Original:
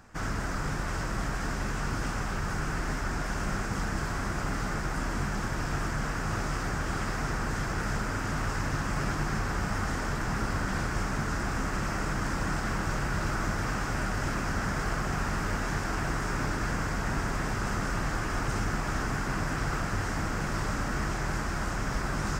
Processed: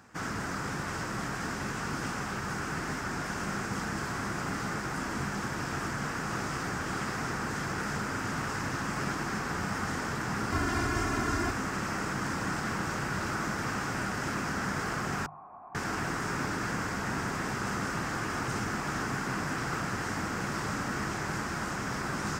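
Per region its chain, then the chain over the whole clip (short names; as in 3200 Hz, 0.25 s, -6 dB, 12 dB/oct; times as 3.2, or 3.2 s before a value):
10.52–11.51 low shelf 210 Hz +6.5 dB + comb 2.9 ms, depth 87%
15.26–15.75 vocal tract filter a + high shelf 3500 Hz -8.5 dB + notch 480 Hz, Q 6.2
whole clip: HPF 110 Hz 12 dB/oct; bell 620 Hz -3.5 dB 0.39 oct; notches 50/100/150 Hz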